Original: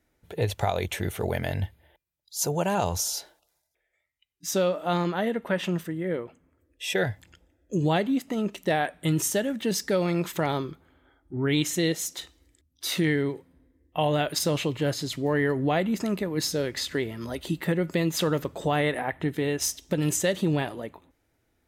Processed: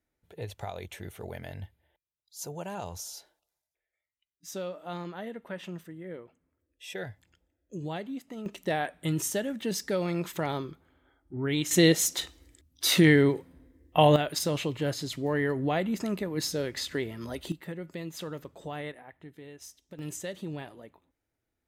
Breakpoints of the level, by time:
−12 dB
from 0:08.46 −4.5 dB
from 0:11.71 +5 dB
from 0:14.16 −3.5 dB
from 0:17.52 −13 dB
from 0:18.92 −20 dB
from 0:19.99 −12.5 dB

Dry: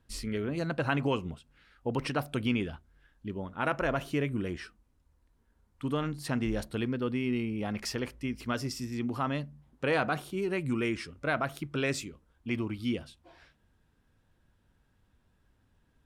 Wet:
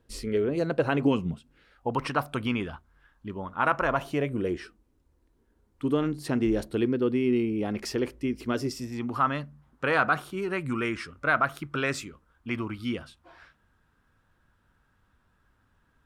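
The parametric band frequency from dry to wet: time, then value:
parametric band +10.5 dB 0.99 octaves
0:00.98 440 Hz
0:01.23 140 Hz
0:01.95 1,100 Hz
0:03.90 1,100 Hz
0:04.59 360 Hz
0:08.66 360 Hz
0:09.13 1,300 Hz

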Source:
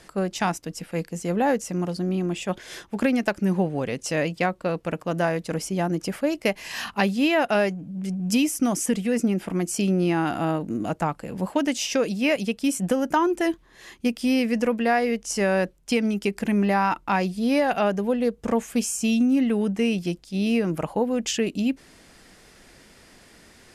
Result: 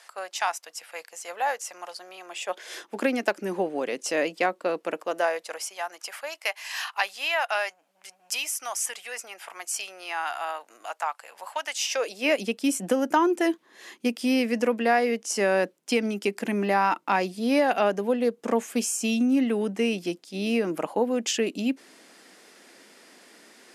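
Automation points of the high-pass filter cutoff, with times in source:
high-pass filter 24 dB per octave
0:02.25 690 Hz
0:02.88 290 Hz
0:04.86 290 Hz
0:05.75 780 Hz
0:11.80 780 Hz
0:12.43 240 Hz

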